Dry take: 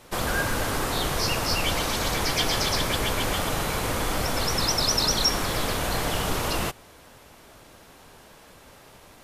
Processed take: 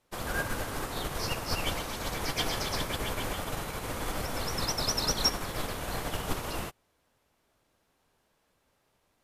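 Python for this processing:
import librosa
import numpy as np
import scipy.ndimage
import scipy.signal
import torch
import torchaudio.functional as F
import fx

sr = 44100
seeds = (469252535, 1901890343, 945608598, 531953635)

y = fx.dynamic_eq(x, sr, hz=4700.0, q=0.78, threshold_db=-34.0, ratio=4.0, max_db=-3)
y = fx.upward_expand(y, sr, threshold_db=-36.0, expansion=2.5)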